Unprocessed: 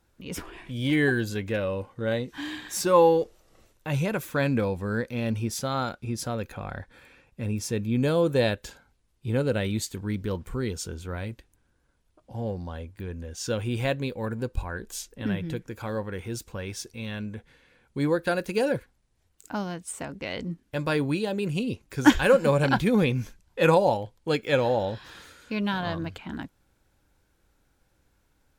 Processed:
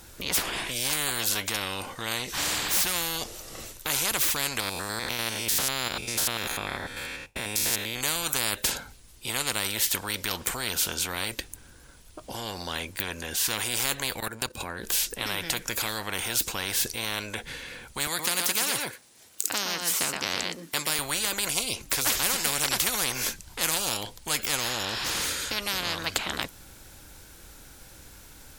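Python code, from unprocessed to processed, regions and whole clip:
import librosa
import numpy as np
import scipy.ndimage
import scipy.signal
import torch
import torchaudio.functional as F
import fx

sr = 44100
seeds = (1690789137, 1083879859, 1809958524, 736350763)

y = fx.chain(x, sr, fx.spec_steps(hold_ms=100),
    fx.gate_hold(open_db=-47.0, close_db=-52.0, hold_ms=71.0, range_db=-21, attack_ms=1.4, release_ms=100.0), at=(4.6, 8.01))
y = fx.chain(y, sr, fx.highpass(hz=89.0, slope=12),
    fx.level_steps(step_db=15), at=(14.2, 14.85))
y = fx.chain(y, sr, fx.highpass(hz=250.0, slope=12),
    fx.echo_single(ms=119, db=-9.5), at=(18.07, 20.99))
y = fx.high_shelf(y, sr, hz=2900.0, db=11.5)
y = fx.spectral_comp(y, sr, ratio=10.0)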